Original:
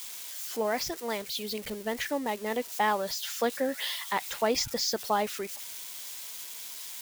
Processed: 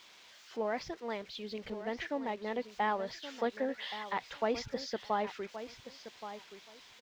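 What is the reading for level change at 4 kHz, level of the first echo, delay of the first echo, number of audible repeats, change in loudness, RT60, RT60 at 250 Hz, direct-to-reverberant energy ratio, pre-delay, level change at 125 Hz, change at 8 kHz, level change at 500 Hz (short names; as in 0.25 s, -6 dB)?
-11.0 dB, -12.0 dB, 1.124 s, 2, -6.0 dB, none, none, none, none, -4.5 dB, -20.0 dB, -5.0 dB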